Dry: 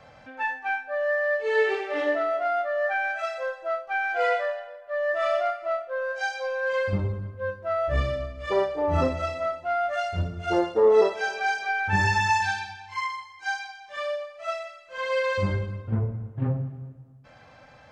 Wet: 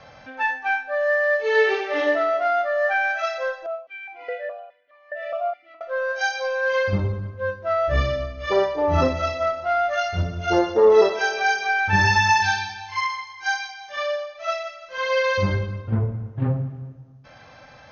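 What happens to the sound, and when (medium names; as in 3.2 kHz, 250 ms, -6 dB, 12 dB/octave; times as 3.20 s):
3.66–5.81 s: stepped vowel filter 4.8 Hz
9.08–15.18 s: feedback delay 173 ms, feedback 50%, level -16.5 dB
whole clip: Chebyshev low-pass 6.5 kHz, order 8; treble shelf 3.8 kHz +6.5 dB; de-hum 244.9 Hz, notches 28; trim +4.5 dB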